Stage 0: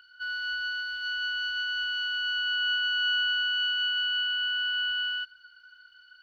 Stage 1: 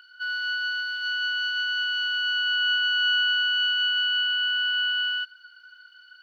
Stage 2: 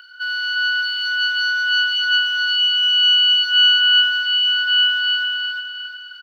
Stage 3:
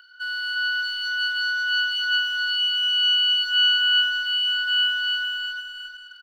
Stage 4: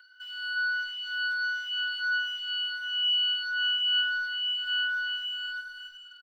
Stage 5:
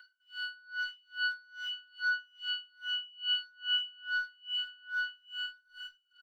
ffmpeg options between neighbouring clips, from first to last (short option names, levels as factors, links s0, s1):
-af "highpass=510,volume=1.58"
-filter_complex "[0:a]acrossover=split=2100|2500[s0][s1][s2];[s0]alimiter=level_in=2.37:limit=0.0631:level=0:latency=1,volume=0.422[s3];[s3][s1][s2]amix=inputs=3:normalize=0,aecho=1:1:356|712|1068|1424|1780:0.708|0.297|0.125|0.0525|0.022,volume=2.51"
-filter_complex "[0:a]asplit=2[s0][s1];[s1]aeval=exprs='sgn(val(0))*max(abs(val(0))-0.0188,0)':c=same,volume=0.355[s2];[s0][s2]amix=inputs=2:normalize=0,equalizer=f=2500:t=o:w=0.22:g=-6.5,volume=0.447"
-filter_complex "[0:a]acrossover=split=3400[s0][s1];[s1]acompressor=threshold=0.00891:ratio=4:attack=1:release=60[s2];[s0][s2]amix=inputs=2:normalize=0,asplit=2[s3][s4];[s4]adelay=3.5,afreqshift=1.4[s5];[s3][s5]amix=inputs=2:normalize=1,volume=0.75"
-af "aeval=exprs='val(0)*pow(10,-32*(0.5-0.5*cos(2*PI*2.4*n/s))/20)':c=same"